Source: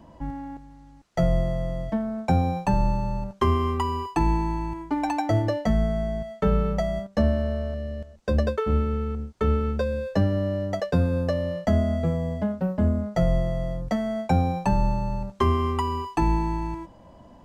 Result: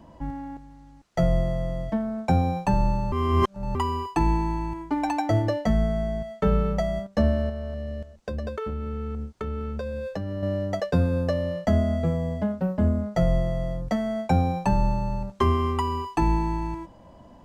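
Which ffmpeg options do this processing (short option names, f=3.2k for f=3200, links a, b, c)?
-filter_complex "[0:a]asettb=1/sr,asplit=3[a][b][c];[a]atrim=end=7.494[d];[b]atrim=start=7.49:end=10.43,asetpts=PTS-STARTPTS,afade=t=in:d=0.004:c=qsin,afade=t=out:st=2.936:d=0.004:c=qsin,acompressor=threshold=-27dB:ratio=6:attack=3.2:release=140:knee=1:detection=peak[e];[c]atrim=start=10.426[f];[d][e]acrossfade=d=0.004:c1=hsin:c2=qsin[g];[g][f]acrossfade=d=0.004:c1=qsin:c2=hsin,asplit=3[h][i][j];[h]atrim=end=3.122[k];[i]atrim=start=3.118:end=3.752,asetpts=PTS-STARTPTS,areverse[l];[j]atrim=start=3.748[m];[k][l]acrossfade=d=0.004:c1=hsin:c2=hsin[n];[n][m]acrossfade=d=0.004:c1=hsin:c2=hsin"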